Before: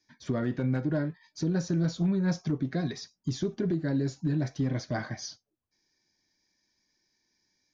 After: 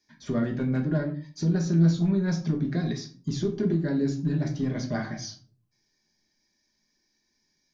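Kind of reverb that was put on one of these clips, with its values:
rectangular room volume 260 cubic metres, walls furnished, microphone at 1.3 metres

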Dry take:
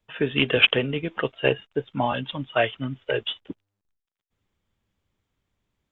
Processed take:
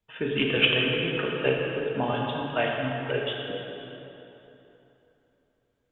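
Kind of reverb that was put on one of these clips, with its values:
dense smooth reverb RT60 3.3 s, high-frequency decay 0.7×, DRR −2 dB
level −6 dB

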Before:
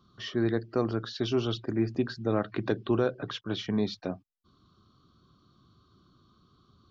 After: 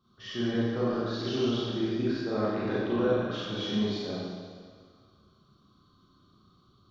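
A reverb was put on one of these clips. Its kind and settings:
four-comb reverb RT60 1.8 s, combs from 30 ms, DRR −9.5 dB
level −9 dB

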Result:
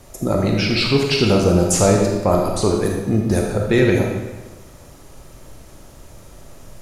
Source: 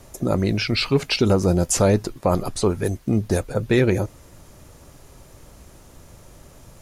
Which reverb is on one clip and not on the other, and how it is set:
comb and all-pass reverb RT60 1.2 s, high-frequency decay 0.9×, pre-delay 0 ms, DRR 0 dB
level +1 dB

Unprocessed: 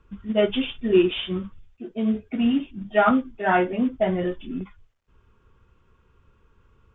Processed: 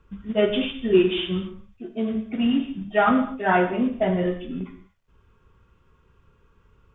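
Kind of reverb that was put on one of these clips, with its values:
reverb whose tail is shaped and stops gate 270 ms falling, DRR 6 dB

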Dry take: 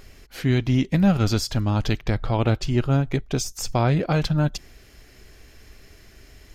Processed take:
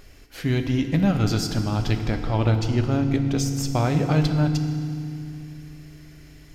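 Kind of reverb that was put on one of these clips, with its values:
feedback delay network reverb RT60 2.5 s, low-frequency decay 1.55×, high-frequency decay 0.9×, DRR 6 dB
level −2 dB

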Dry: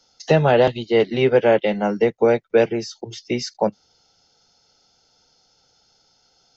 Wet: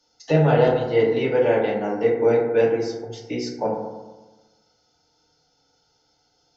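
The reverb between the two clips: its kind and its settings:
feedback delay network reverb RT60 1.2 s, low-frequency decay 1.1×, high-frequency decay 0.3×, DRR −3.5 dB
level −8.5 dB

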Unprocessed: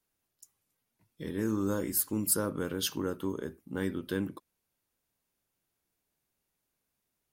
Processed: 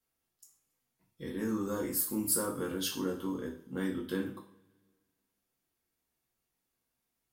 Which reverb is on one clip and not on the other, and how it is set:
coupled-rooms reverb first 0.41 s, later 1.8 s, from −25 dB, DRR −1.5 dB
level −5 dB

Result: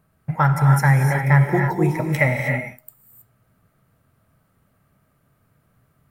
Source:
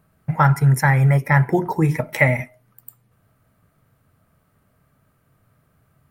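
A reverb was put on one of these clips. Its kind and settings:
reverb whose tail is shaped and stops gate 340 ms rising, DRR 3 dB
level −2.5 dB

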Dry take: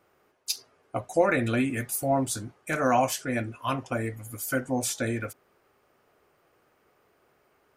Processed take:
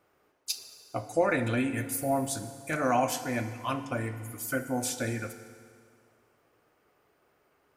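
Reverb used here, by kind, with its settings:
feedback delay network reverb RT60 2.1 s, low-frequency decay 1×, high-frequency decay 0.9×, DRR 9.5 dB
level −3 dB

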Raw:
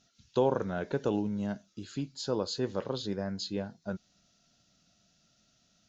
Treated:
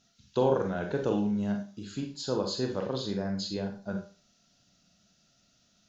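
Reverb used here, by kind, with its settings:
four-comb reverb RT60 0.36 s, combs from 31 ms, DRR 3 dB

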